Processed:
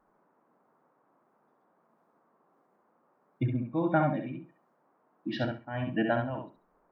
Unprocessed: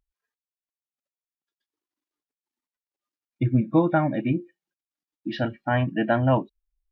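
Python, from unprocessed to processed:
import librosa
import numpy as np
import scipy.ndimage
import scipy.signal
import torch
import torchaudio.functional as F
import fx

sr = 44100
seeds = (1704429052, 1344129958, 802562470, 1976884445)

y = x * (1.0 - 0.78 / 2.0 + 0.78 / 2.0 * np.cos(2.0 * np.pi * 1.5 * (np.arange(len(x)) / sr)))
y = fx.dmg_noise_band(y, sr, seeds[0], low_hz=160.0, high_hz=1200.0, level_db=-67.0)
y = fx.echo_feedback(y, sr, ms=67, feedback_pct=19, wet_db=-5.0)
y = y * 10.0 ** (-4.0 / 20.0)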